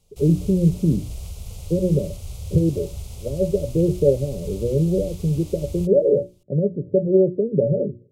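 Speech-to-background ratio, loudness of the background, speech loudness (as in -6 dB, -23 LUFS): 15.0 dB, -36.0 LUFS, -21.0 LUFS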